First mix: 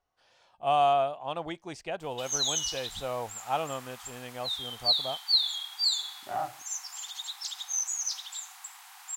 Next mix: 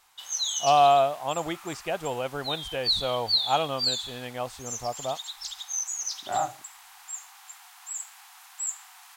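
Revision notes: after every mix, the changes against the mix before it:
speech +5.0 dB
background: entry −2.00 s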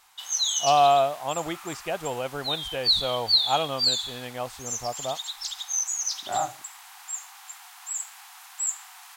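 background +3.5 dB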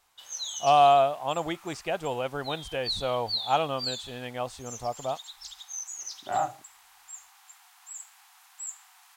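background −10.0 dB

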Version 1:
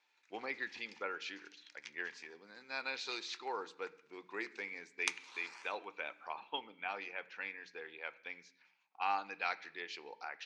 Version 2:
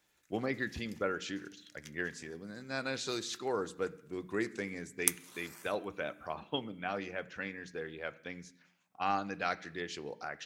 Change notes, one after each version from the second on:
speech +5.0 dB
master: remove loudspeaker in its box 480–5,700 Hz, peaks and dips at 620 Hz −6 dB, 890 Hz +9 dB, 2,400 Hz +9 dB, 4,300 Hz +4 dB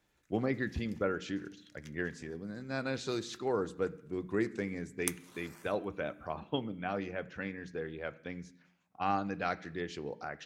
master: add spectral tilt −2 dB per octave

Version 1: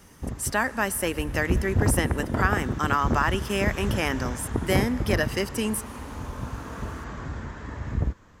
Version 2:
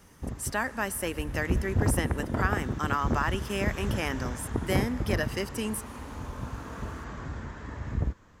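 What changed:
speech −5.0 dB
background −3.0 dB

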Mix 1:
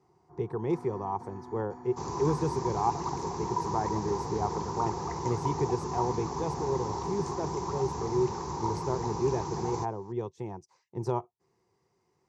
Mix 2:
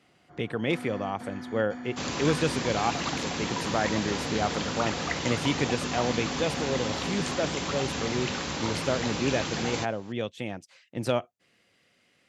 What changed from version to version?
master: remove drawn EQ curve 150 Hz 0 dB, 270 Hz −13 dB, 380 Hz +7 dB, 580 Hz −15 dB, 940 Hz +8 dB, 1,400 Hz −15 dB, 2,100 Hz −18 dB, 3,100 Hz −26 dB, 5,800 Hz −6 dB, 10,000 Hz −18 dB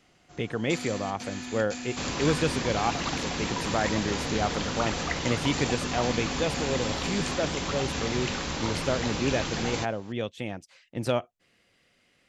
first sound: remove Savitzky-Golay smoothing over 41 samples
master: remove high-pass filter 87 Hz

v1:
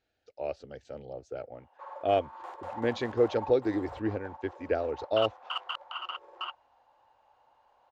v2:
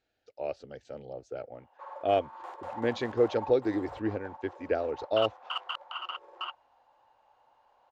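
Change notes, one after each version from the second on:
master: add parametric band 73 Hz −6 dB 0.64 octaves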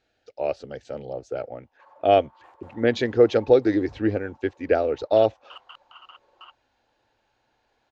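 speech +8.5 dB
background −10.0 dB

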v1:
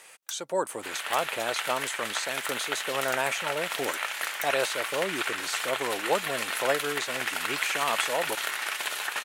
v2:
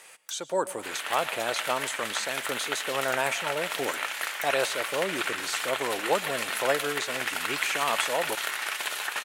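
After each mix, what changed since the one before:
first sound −3.5 dB
reverb: on, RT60 0.50 s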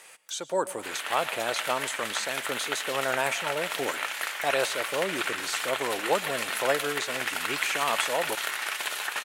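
first sound −6.5 dB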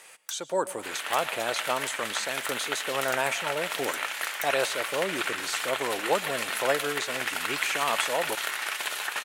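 first sound +10.5 dB

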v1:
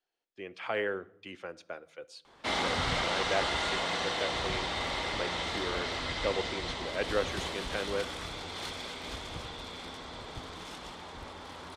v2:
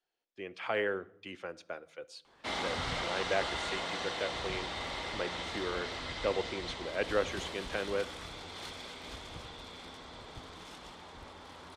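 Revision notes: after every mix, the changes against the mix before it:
background −5.0 dB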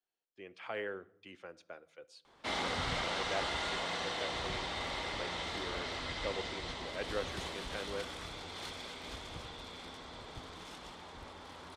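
speech −7.5 dB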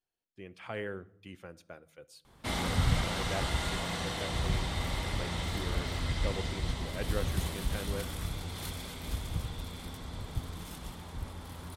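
master: remove three-way crossover with the lows and the highs turned down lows −16 dB, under 290 Hz, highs −24 dB, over 7,000 Hz

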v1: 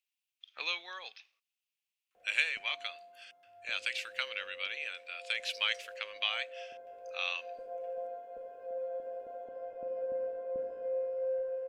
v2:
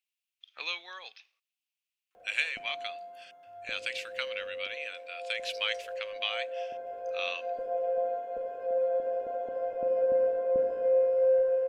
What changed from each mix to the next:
background +10.0 dB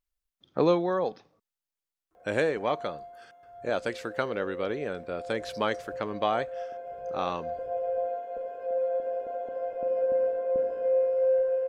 speech: remove high-pass with resonance 2,600 Hz, resonance Q 4.3

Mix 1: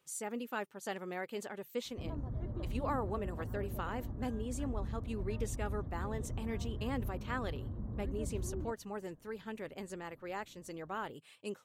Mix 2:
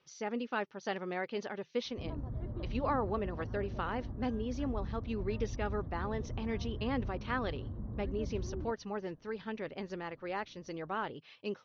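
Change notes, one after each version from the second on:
speech +3.5 dB
master: add Butterworth low-pass 6,000 Hz 96 dB per octave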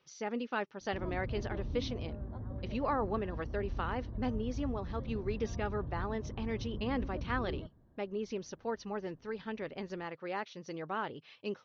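background: entry −1.05 s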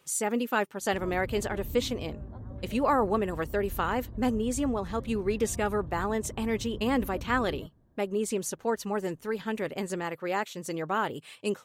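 speech +8.0 dB
master: remove Butterworth low-pass 6,000 Hz 96 dB per octave

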